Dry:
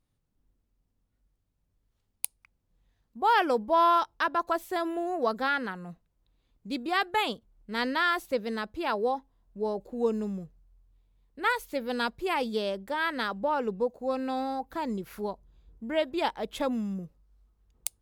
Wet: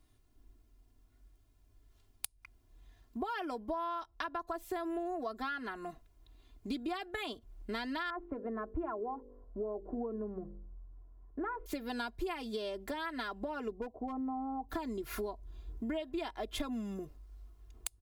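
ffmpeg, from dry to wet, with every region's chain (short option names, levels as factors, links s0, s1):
-filter_complex "[0:a]asettb=1/sr,asplit=3[s0][s1][s2];[s0]atrim=end=8.104[s3];[s1]atrim=start=8.1:end=11.66,asetpts=PTS-STARTPTS,afade=t=in:d=0.004:c=qsin,afade=t=out:st=3.556:d=0.004:c=qsin,lowpass=f=1300:w=0.5412,lowpass=f=1300:w=1.3066,bandreject=f=49.41:t=h:w=4,bandreject=f=98.82:t=h:w=4,bandreject=f=148.23:t=h:w=4,bandreject=f=197.64:t=h:w=4,bandreject=f=247.05:t=h:w=4,bandreject=f=296.46:t=h:w=4,bandreject=f=345.87:t=h:w=4,bandreject=f=395.28:t=h:w=4,bandreject=f=444.69:t=h:w=4,bandreject=f=494.1:t=h:w=4,bandreject=f=543.51:t=h:w=4[s4];[s2]atrim=start=11.656[s5];[s3][s4]acrossfade=d=0.004:c1=hsin:c2=qsin[s6];[s6][s5]acrossfade=d=0.004:c1=qsin:c2=hsin,asettb=1/sr,asplit=3[s7][s8][s9];[s7]atrim=end=13.714[s10];[s8]atrim=start=13.71:end=14.69,asetpts=PTS-STARTPTS,afade=t=in:d=0.004:c=qsin,afade=t=out:st=0.976:d=0.004:c=qsin,lowpass=f=1000:w=0.5412,lowpass=f=1000:w=1.3066,asoftclip=type=hard:threshold=0.075[s11];[s9]atrim=start=14.686[s12];[s10][s11]acrossfade=d=0.004:c1=hsin:c2=qsin[s13];[s13][s12]acrossfade=d=0.004:c1=qsin:c2=hsin,acompressor=threshold=0.0141:ratio=2.5,aecho=1:1:2.9:0.87,acrossover=split=130[s14][s15];[s15]acompressor=threshold=0.00631:ratio=4[s16];[s14][s16]amix=inputs=2:normalize=0,volume=2.11"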